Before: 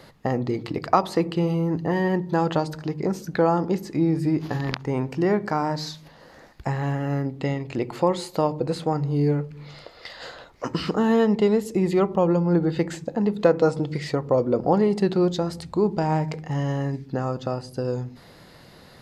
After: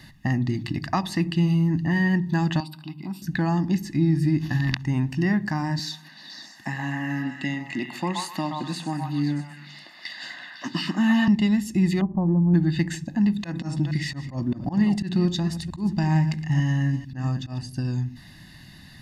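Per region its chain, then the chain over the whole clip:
2.6–3.22 HPF 270 Hz + fixed phaser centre 1800 Hz, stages 6
5.79–11.28 HPF 190 Hz 24 dB/oct + delay with a stepping band-pass 0.126 s, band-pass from 1000 Hz, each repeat 0.7 oct, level 0 dB
12.01–12.54 G.711 law mismatch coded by A + inverse Chebyshev low-pass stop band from 5100 Hz, stop band 80 dB
13.24–17.63 reverse delay 0.224 s, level -13 dB + auto swell 0.116 s
whole clip: band shelf 690 Hz -11.5 dB; comb 1.1 ms, depth 95%

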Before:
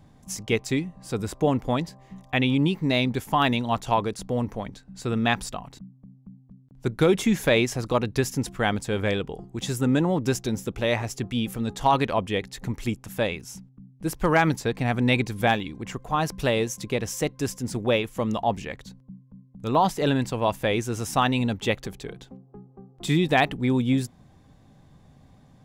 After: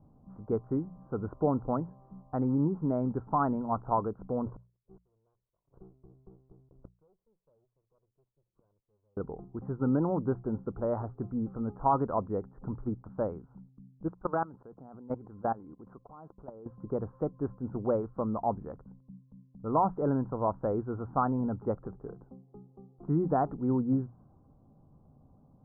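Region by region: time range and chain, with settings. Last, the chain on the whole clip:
4.46–9.17 minimum comb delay 1.9 ms + resonant high shelf 4900 Hz +10.5 dB, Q 3 + flipped gate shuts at -27 dBFS, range -42 dB
14.08–16.66 low shelf 130 Hz -9.5 dB + level quantiser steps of 21 dB
whole clip: low-pass opened by the level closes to 850 Hz, open at -20 dBFS; Chebyshev low-pass 1400 Hz, order 6; notches 60/120/180 Hz; gain -5 dB

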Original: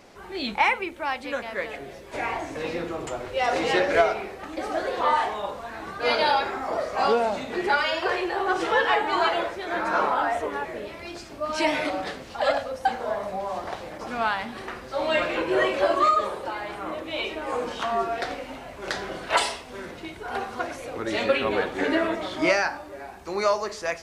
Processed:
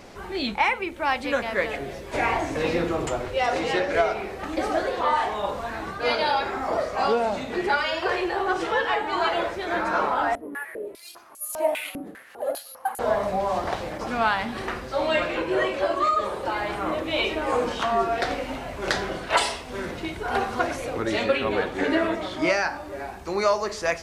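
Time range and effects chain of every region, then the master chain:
10.35–12.99 careless resampling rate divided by 4×, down none, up zero stuff + stepped band-pass 5 Hz 260–7300 Hz
whole clip: vocal rider within 4 dB 0.5 s; low shelf 160 Hz +5.5 dB; gain +1 dB

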